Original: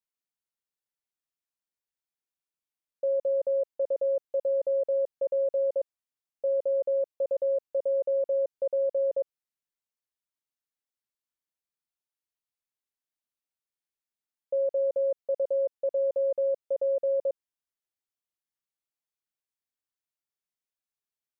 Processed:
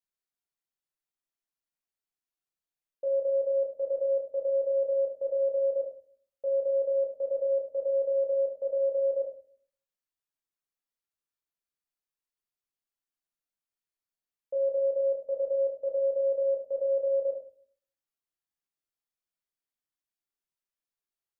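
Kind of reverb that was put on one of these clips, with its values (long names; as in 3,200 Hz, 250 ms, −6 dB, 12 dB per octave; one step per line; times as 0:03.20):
rectangular room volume 48 cubic metres, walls mixed, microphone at 0.65 metres
level −5.5 dB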